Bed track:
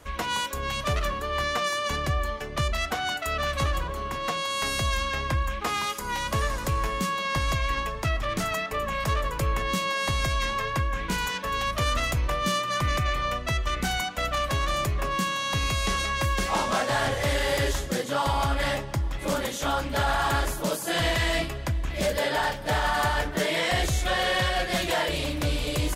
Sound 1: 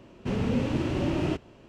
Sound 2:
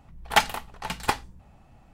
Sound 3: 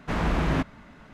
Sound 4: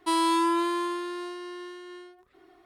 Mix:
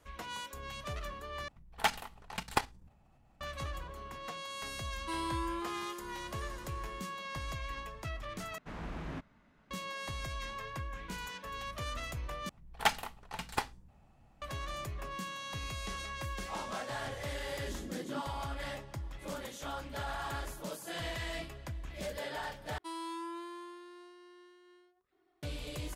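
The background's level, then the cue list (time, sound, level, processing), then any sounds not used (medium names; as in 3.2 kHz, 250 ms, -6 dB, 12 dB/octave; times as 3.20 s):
bed track -14 dB
1.48 s: replace with 2 -5 dB + level held to a coarse grid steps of 10 dB
5.01 s: add 4 -13.5 dB
8.58 s: replace with 3 -17 dB
12.49 s: replace with 2 -9 dB
17.58 s: add 3 -12 dB + Butterworth band-pass 290 Hz, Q 1.6
22.78 s: replace with 4 -17.5 dB
not used: 1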